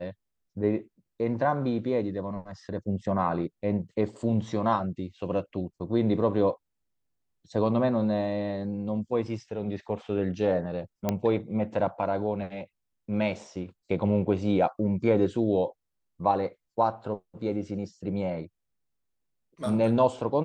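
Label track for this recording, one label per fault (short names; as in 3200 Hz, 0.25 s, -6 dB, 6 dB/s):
11.090000	11.090000	pop -12 dBFS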